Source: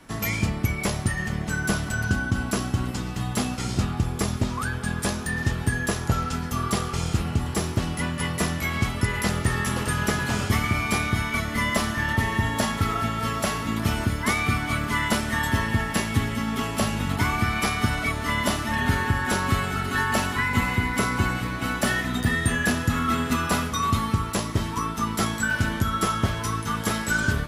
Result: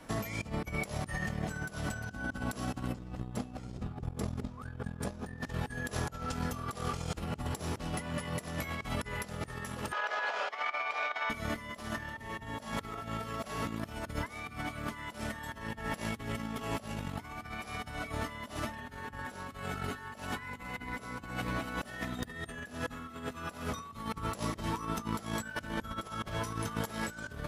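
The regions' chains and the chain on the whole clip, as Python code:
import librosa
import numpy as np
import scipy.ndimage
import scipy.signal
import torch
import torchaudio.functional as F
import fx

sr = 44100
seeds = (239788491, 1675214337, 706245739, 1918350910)

y = fx.chain(x, sr, fx.highpass(hz=46.0, slope=12),
    fx.tilt_eq(slope=-2.0),
    fx.over_compress(threshold_db=-24.0, ratio=-0.5), at=(2.92, 5.41))
y = fx.chain(y, sr, fx.over_compress(threshold_db=-26.0, ratio=-0.5),
    fx.highpass(hz=590.0, slope=24),
    fx.air_absorb(metres=220.0), at=(9.92, 11.3))
y = fx.peak_eq(y, sr, hz=550.0, db=6.5, octaves=1.2)
y = fx.notch(y, sr, hz=380.0, q=12.0)
y = fx.over_compress(y, sr, threshold_db=-29.0, ratio=-0.5)
y = y * librosa.db_to_amplitude(-8.5)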